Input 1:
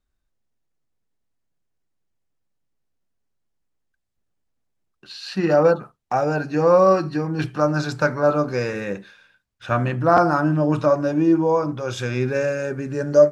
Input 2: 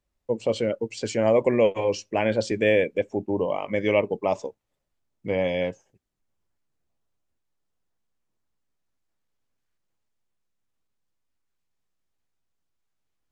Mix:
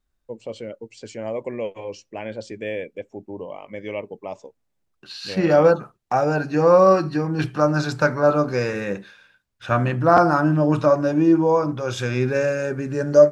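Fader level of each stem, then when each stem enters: +1.0, −8.5 decibels; 0.00, 0.00 seconds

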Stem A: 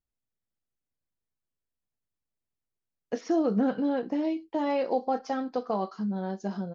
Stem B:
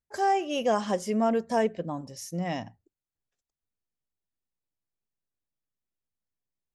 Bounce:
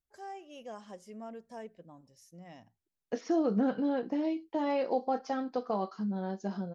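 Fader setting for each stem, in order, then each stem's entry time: −3.0, −19.5 decibels; 0.00, 0.00 seconds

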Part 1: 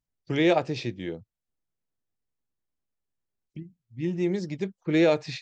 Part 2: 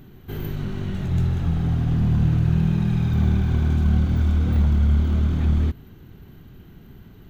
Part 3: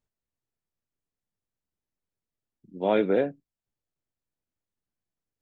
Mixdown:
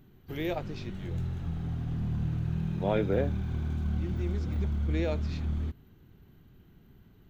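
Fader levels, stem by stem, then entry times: −11.5, −12.0, −5.5 decibels; 0.00, 0.00, 0.00 seconds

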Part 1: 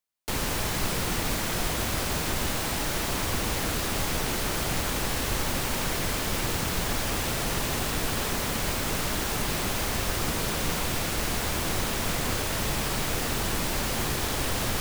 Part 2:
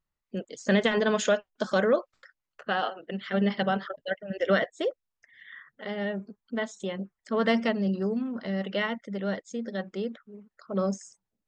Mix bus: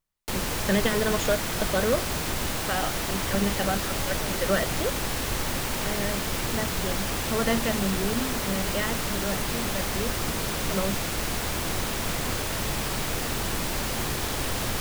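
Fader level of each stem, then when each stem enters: −0.5, −1.5 decibels; 0.00, 0.00 seconds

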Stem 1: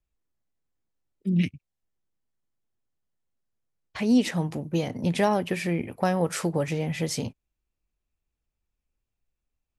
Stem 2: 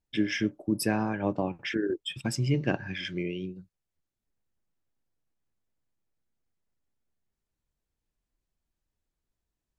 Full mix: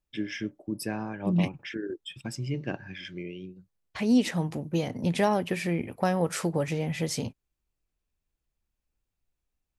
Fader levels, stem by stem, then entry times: −1.5, −5.5 decibels; 0.00, 0.00 seconds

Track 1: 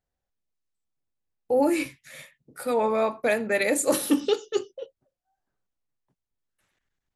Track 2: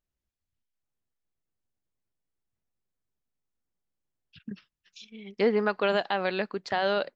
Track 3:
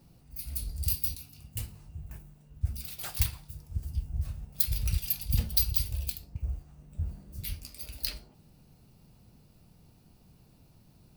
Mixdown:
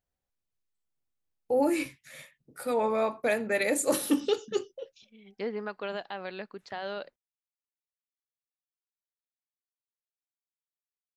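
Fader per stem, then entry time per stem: −3.5 dB, −10.0 dB, muted; 0.00 s, 0.00 s, muted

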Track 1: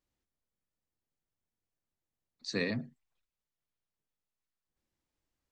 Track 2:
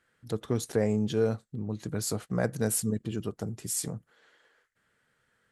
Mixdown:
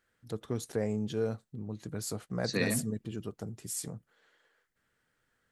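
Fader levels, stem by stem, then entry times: +2.0, −5.5 decibels; 0.00, 0.00 seconds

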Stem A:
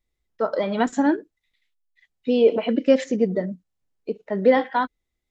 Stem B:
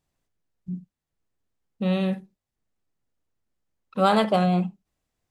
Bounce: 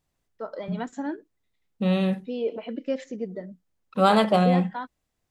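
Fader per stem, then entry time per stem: −11.5, +1.0 decibels; 0.00, 0.00 seconds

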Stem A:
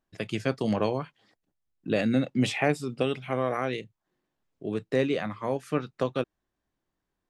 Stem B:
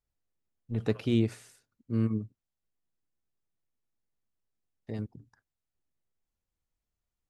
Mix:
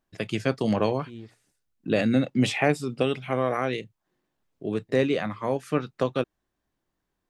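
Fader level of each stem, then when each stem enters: +2.5, −16.5 decibels; 0.00, 0.00 seconds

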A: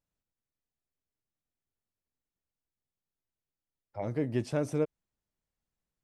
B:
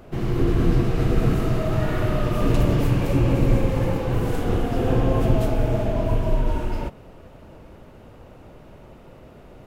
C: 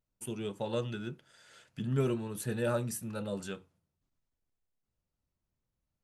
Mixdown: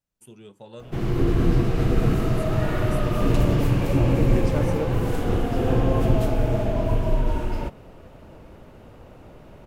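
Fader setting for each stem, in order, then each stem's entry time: +1.0, −0.5, −8.0 decibels; 0.00, 0.80, 0.00 seconds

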